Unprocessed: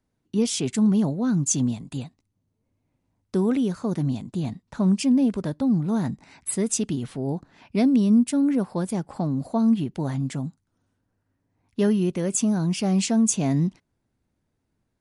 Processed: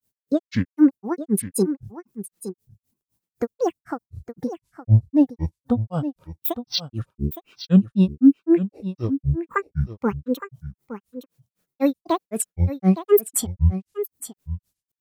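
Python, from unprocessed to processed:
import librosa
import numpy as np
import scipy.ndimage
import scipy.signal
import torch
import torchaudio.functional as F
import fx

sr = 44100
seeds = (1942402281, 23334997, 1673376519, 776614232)

p1 = fx.dmg_noise_colour(x, sr, seeds[0], colour='violet', level_db=-64.0)
p2 = fx.noise_reduce_blind(p1, sr, reduce_db=13)
p3 = fx.granulator(p2, sr, seeds[1], grain_ms=141.0, per_s=3.9, spray_ms=100.0, spread_st=12)
p4 = p3 + fx.echo_single(p3, sr, ms=864, db=-12.0, dry=0)
y = p4 * librosa.db_to_amplitude(8.0)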